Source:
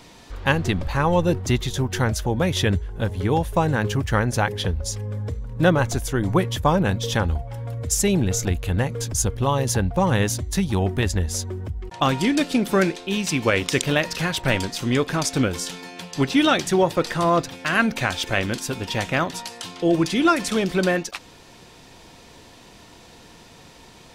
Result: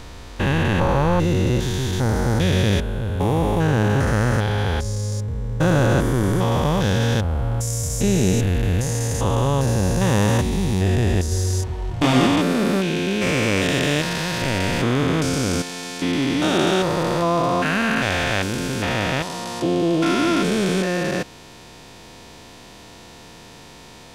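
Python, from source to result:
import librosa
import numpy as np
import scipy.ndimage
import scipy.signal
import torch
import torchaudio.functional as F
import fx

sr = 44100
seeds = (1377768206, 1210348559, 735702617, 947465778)

y = fx.spec_steps(x, sr, hold_ms=400)
y = fx.doubler(y, sr, ms=24.0, db=-2.0, at=(11.29, 12.27))
y = y * 10.0 ** (6.0 / 20.0)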